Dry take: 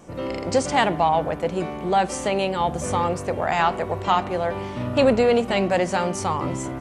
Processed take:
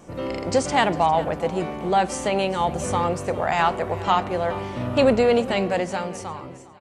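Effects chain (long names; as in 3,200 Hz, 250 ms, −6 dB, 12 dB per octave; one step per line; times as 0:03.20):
fade-out on the ending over 1.44 s
repeating echo 404 ms, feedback 36%, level −18 dB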